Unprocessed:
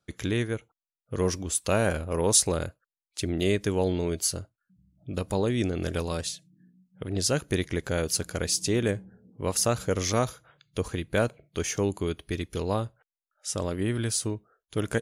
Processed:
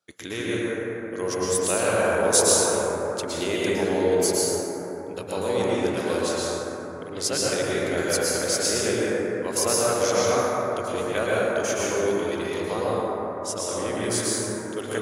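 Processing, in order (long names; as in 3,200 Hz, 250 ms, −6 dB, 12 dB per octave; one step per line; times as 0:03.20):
high-pass filter 78 Hz
bass and treble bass −14 dB, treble +2 dB
dense smooth reverb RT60 4.2 s, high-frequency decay 0.25×, pre-delay 100 ms, DRR −7.5 dB
level −1.5 dB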